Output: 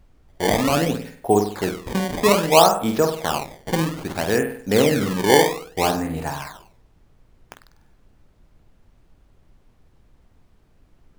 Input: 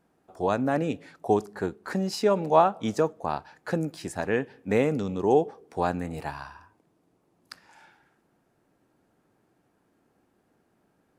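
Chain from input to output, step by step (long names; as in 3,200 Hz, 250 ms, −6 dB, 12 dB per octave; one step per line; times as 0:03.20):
noise gate −45 dBFS, range −22 dB
on a send: flutter between parallel walls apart 8.4 metres, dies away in 0.52 s
on the sum: sample-and-hold swept by an LFO 19×, swing 160% 0.61 Hz
background noise brown −58 dBFS
level +5 dB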